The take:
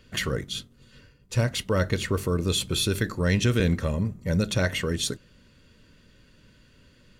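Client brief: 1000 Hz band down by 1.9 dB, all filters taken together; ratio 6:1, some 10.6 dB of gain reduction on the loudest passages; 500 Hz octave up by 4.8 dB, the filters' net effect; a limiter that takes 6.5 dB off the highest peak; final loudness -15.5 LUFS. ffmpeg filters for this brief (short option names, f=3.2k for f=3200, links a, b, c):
-af "equalizer=f=500:t=o:g=6.5,equalizer=f=1k:t=o:g=-4,acompressor=threshold=-29dB:ratio=6,volume=20dB,alimiter=limit=-5.5dB:level=0:latency=1"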